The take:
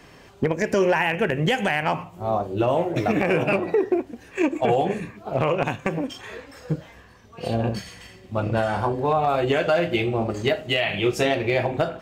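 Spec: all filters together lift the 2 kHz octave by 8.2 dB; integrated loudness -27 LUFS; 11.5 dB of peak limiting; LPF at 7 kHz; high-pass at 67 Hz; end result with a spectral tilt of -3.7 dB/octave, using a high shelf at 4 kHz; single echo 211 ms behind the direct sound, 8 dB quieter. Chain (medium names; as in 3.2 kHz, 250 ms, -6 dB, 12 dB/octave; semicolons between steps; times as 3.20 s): high-pass 67 Hz; low-pass 7 kHz; peaking EQ 2 kHz +8.5 dB; treble shelf 4 kHz +6.5 dB; peak limiter -15 dBFS; delay 211 ms -8 dB; trim -1.5 dB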